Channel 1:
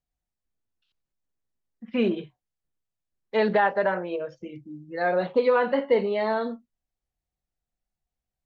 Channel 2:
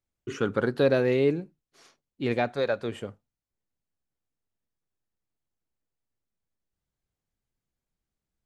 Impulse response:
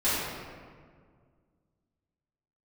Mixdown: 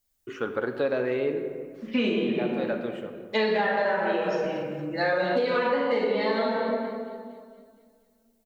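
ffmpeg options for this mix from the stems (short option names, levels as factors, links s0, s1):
-filter_complex "[0:a]crystalizer=i=5:c=0,volume=0.596,asplit=4[s0][s1][s2][s3];[s1]volume=0.596[s4];[s2]volume=0.224[s5];[1:a]bass=f=250:g=-12,treble=f=4000:g=-13,volume=0.841,asplit=2[s6][s7];[s7]volume=0.112[s8];[s3]apad=whole_len=372834[s9];[s6][s9]sidechaincompress=threshold=0.0282:ratio=8:attack=16:release=1260[s10];[2:a]atrim=start_sample=2205[s11];[s4][s8]amix=inputs=2:normalize=0[s12];[s12][s11]afir=irnorm=-1:irlink=0[s13];[s5]aecho=0:1:232|464|696|928|1160|1392|1624|1856:1|0.54|0.292|0.157|0.085|0.0459|0.0248|0.0134[s14];[s0][s10][s13][s14]amix=inputs=4:normalize=0,acompressor=threshold=0.0891:ratio=12"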